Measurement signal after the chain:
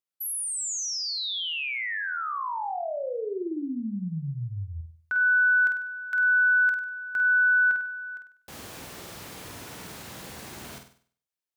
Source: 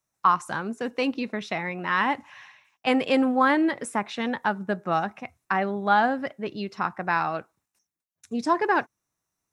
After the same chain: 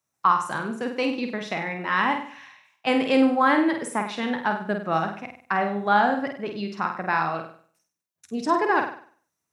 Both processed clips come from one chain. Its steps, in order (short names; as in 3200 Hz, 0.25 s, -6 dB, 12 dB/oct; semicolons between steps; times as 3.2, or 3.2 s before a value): HPF 89 Hz; on a send: flutter echo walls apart 8.4 m, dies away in 0.49 s